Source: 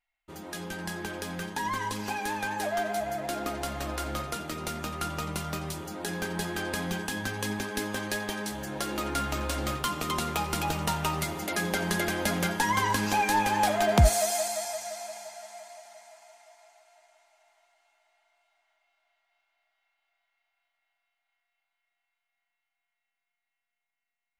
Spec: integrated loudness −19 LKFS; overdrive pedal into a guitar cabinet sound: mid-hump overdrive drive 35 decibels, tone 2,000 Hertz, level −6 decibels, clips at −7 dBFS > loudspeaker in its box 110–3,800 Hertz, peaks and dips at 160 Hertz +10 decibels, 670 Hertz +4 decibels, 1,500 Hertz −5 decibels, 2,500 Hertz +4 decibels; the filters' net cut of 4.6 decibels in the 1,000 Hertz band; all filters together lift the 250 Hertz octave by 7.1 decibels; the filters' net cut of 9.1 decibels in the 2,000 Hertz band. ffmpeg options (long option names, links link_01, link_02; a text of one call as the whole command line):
ffmpeg -i in.wav -filter_complex "[0:a]equalizer=frequency=250:width_type=o:gain=7,equalizer=frequency=1000:width_type=o:gain=-7,equalizer=frequency=2000:width_type=o:gain=-8.5,asplit=2[link_01][link_02];[link_02]highpass=frequency=720:poles=1,volume=35dB,asoftclip=type=tanh:threshold=-7dB[link_03];[link_01][link_03]amix=inputs=2:normalize=0,lowpass=frequency=2000:poles=1,volume=-6dB,highpass=110,equalizer=frequency=160:width_type=q:width=4:gain=10,equalizer=frequency=670:width_type=q:width=4:gain=4,equalizer=frequency=1500:width_type=q:width=4:gain=-5,equalizer=frequency=2500:width_type=q:width=4:gain=4,lowpass=frequency=3800:width=0.5412,lowpass=frequency=3800:width=1.3066,volume=-3dB" out.wav